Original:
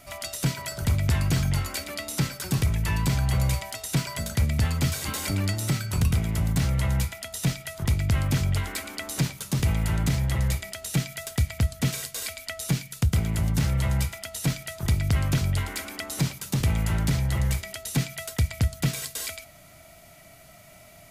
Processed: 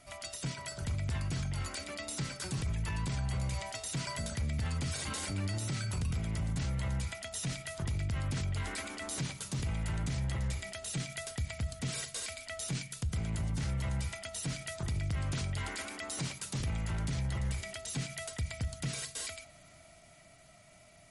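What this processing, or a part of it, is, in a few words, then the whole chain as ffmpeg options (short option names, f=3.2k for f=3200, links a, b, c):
low-bitrate web radio: -filter_complex "[0:a]asettb=1/sr,asplit=3[a][b][c];[a]atrim=end=15.314[d];[b]atrim=start=15.31:end=16.6,asetpts=PTS-STARTPTS,afade=t=in:d=0.004:c=qsin,afade=t=out:st=1.286:d=0.004:c=qsin,lowshelf=f=300:g=-4.5[e];[c]atrim=start=16.596[f];[d][e]acrossfade=d=0.004:c1=hsin:c2=qsin[g];[g][f]acrossfade=d=0.004:c1=qsin:c2=hsin,dynaudnorm=f=260:g=17:m=5dB,alimiter=limit=-19.5dB:level=0:latency=1:release=33,volume=-7.5dB" -ar 48000 -c:a libmp3lame -b:a 48k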